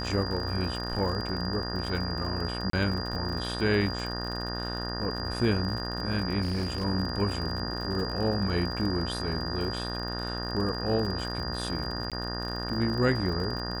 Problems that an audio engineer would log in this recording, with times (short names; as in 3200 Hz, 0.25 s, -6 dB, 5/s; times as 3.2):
buzz 60 Hz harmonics 31 -35 dBFS
crackle 61/s -35 dBFS
tone 4800 Hz -36 dBFS
2.7–2.73 gap 33 ms
6.41–6.84 clipped -26 dBFS
12.1–12.12 gap 17 ms